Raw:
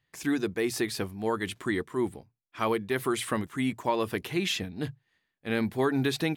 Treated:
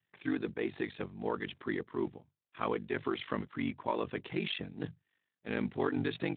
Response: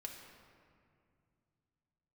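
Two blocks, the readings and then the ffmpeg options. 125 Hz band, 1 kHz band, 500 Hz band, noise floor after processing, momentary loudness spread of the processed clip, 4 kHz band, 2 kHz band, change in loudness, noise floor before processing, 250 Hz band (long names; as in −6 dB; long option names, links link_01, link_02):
−7.0 dB, −6.5 dB, −6.5 dB, below −85 dBFS, 6 LU, −8.5 dB, −7.0 dB, −6.5 dB, −80 dBFS, −6.5 dB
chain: -af "aeval=exprs='val(0)*sin(2*PI*24*n/s)':channel_layout=same,acontrast=31,volume=-8.5dB" -ar 8000 -c:a libspeex -b:a 15k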